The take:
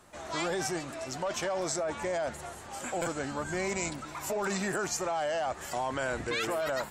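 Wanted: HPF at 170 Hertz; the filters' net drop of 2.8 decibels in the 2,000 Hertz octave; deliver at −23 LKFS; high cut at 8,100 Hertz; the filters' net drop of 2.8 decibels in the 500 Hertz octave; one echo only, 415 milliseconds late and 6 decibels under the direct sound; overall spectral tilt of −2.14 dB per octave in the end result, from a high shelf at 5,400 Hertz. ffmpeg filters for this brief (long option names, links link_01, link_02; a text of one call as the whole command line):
ffmpeg -i in.wav -af "highpass=170,lowpass=8100,equalizer=frequency=500:width_type=o:gain=-3.5,equalizer=frequency=2000:width_type=o:gain=-4.5,highshelf=frequency=5400:gain=8.5,aecho=1:1:415:0.501,volume=10dB" out.wav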